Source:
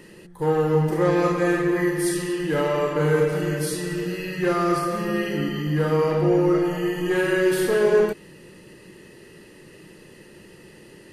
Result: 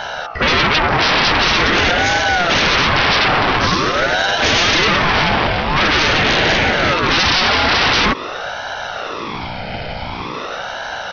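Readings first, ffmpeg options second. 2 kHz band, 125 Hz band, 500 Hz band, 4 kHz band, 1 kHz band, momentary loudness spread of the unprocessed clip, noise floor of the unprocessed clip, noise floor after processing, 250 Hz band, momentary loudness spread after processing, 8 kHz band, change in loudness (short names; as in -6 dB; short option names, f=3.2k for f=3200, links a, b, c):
+16.5 dB, +3.0 dB, +0.5 dB, +23.5 dB, +14.0 dB, 7 LU, -48 dBFS, -26 dBFS, +1.0 dB, 13 LU, +9.0 dB, +8.5 dB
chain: -af "aecho=1:1:1.8:0.49,aeval=exprs='val(0)+0.0112*(sin(2*PI*60*n/s)+sin(2*PI*2*60*n/s)/2+sin(2*PI*3*60*n/s)/3+sin(2*PI*4*60*n/s)/4+sin(2*PI*5*60*n/s)/5)':c=same,aresample=11025,aeval=exprs='0.447*sin(PI/2*8.91*val(0)/0.447)':c=same,aresample=44100,acompressor=threshold=-14dB:ratio=4,highpass=310,aeval=exprs='val(0)*sin(2*PI*730*n/s+730*0.6/0.46*sin(2*PI*0.46*n/s))':c=same,volume=4.5dB"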